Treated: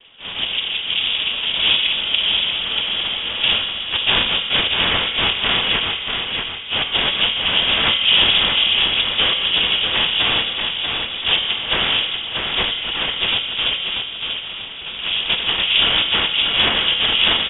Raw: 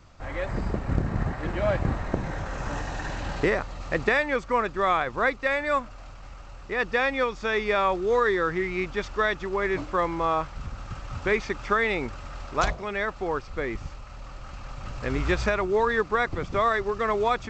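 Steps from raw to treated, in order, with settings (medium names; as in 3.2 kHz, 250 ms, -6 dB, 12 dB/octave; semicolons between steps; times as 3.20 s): band-stop 2.1 kHz, Q 27; de-hum 177.6 Hz, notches 34; in parallel at -0.5 dB: peak limiter -20 dBFS, peak gain reduction 12 dB; on the sum: harmony voices +3 st -7 dB; noise-vocoded speech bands 2; feedback delay 637 ms, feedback 40%, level -5 dB; on a send at -5.5 dB: reverberation RT60 2.0 s, pre-delay 3 ms; on the sum: frequency inversion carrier 3.6 kHz; trim +1.5 dB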